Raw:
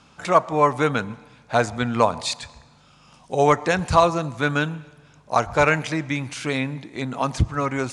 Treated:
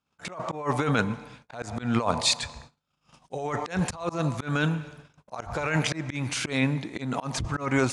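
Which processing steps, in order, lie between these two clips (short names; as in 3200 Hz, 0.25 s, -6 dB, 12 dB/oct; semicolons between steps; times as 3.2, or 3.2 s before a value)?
gate -49 dBFS, range -34 dB; negative-ratio compressor -24 dBFS, ratio -1; auto swell 0.177 s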